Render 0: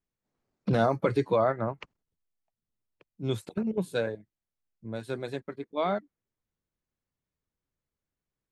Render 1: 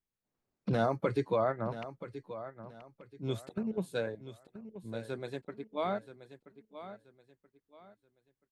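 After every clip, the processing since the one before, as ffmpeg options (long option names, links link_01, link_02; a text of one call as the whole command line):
ffmpeg -i in.wav -af "aecho=1:1:979|1958|2937:0.224|0.0672|0.0201,volume=-5dB" out.wav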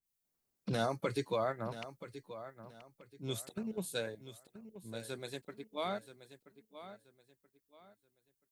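ffmpeg -i in.wav -af "crystalizer=i=3:c=0,adynamicequalizer=threshold=0.00398:dfrequency=2200:dqfactor=0.7:tfrequency=2200:tqfactor=0.7:attack=5:release=100:ratio=0.375:range=2:mode=boostabove:tftype=highshelf,volume=-5dB" out.wav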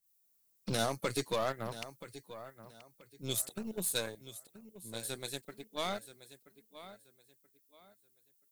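ffmpeg -i in.wav -af "aeval=exprs='0.0841*(cos(1*acos(clip(val(0)/0.0841,-1,1)))-cos(1*PI/2))+0.00266*(cos(7*acos(clip(val(0)/0.0841,-1,1)))-cos(7*PI/2))+0.00473*(cos(8*acos(clip(val(0)/0.0841,-1,1)))-cos(8*PI/2))':channel_layout=same,crystalizer=i=3:c=0" out.wav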